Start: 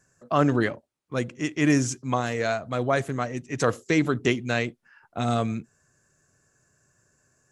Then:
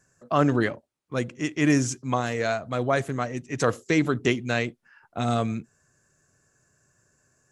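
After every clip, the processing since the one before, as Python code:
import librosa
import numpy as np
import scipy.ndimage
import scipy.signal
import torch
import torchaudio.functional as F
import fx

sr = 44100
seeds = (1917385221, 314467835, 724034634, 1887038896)

y = x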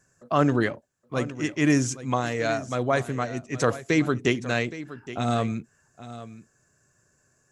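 y = x + 10.0 ** (-15.0 / 20.0) * np.pad(x, (int(819 * sr / 1000.0), 0))[:len(x)]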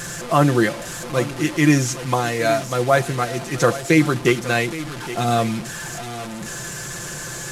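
y = fx.delta_mod(x, sr, bps=64000, step_db=-31.0)
y = y + 0.57 * np.pad(y, (int(5.8 * sr / 1000.0), 0))[:len(y)]
y = F.gain(torch.from_numpy(y), 5.0).numpy()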